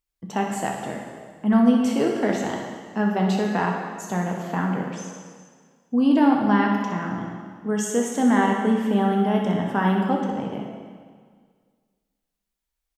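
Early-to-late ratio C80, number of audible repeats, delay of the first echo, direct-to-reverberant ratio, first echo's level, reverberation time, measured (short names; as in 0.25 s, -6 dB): 4.0 dB, 1, 63 ms, -0.5 dB, -8.5 dB, 1.8 s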